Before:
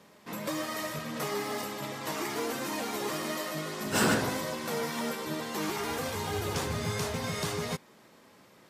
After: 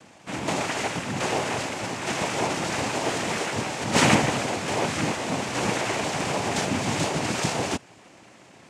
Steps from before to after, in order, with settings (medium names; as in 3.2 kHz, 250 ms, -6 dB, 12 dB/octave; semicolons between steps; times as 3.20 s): noise-vocoded speech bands 4; trim +7.5 dB